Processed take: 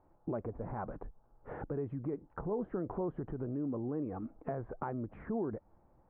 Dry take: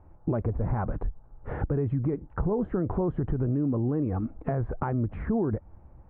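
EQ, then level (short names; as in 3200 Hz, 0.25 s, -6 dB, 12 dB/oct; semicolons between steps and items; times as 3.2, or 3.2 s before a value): bell 69 Hz -7 dB 1.3 oct; low shelf 200 Hz -11 dB; high shelf 2200 Hz -11.5 dB; -4.5 dB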